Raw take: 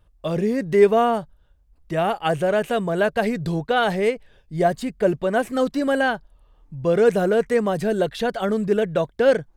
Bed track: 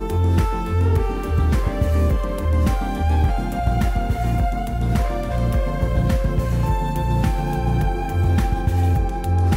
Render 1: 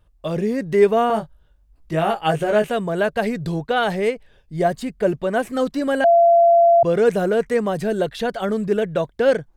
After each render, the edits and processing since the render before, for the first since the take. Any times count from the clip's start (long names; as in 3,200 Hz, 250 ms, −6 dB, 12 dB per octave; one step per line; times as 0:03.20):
0:01.08–0:02.68: double-tracking delay 19 ms −3 dB
0:06.04–0:06.83: beep over 682 Hz −9.5 dBFS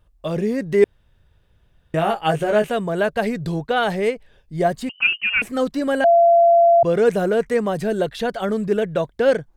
0:00.84–0:01.94: fill with room tone
0:04.89–0:05.42: voice inversion scrambler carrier 3,000 Hz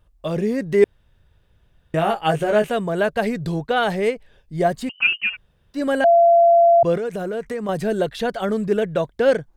0:05.32–0:05.76: fill with room tone, crossfade 0.10 s
0:06.97–0:07.69: downward compressor, threshold −23 dBFS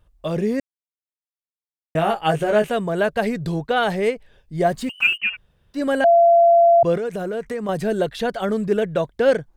0:00.60–0:01.95: silence
0:04.67–0:05.18: mu-law and A-law mismatch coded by mu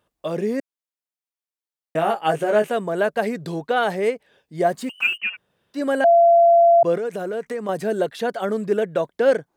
high-pass filter 230 Hz 12 dB per octave
dynamic equaliser 3,400 Hz, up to −4 dB, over −40 dBFS, Q 0.95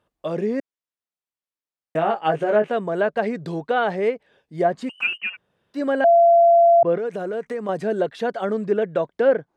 treble cut that deepens with the level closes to 2,000 Hz, closed at −12 dBFS
high-shelf EQ 3,900 Hz −7.5 dB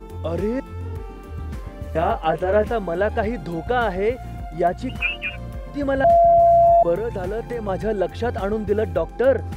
mix in bed track −13 dB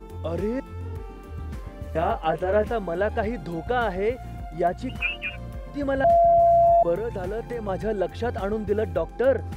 level −3.5 dB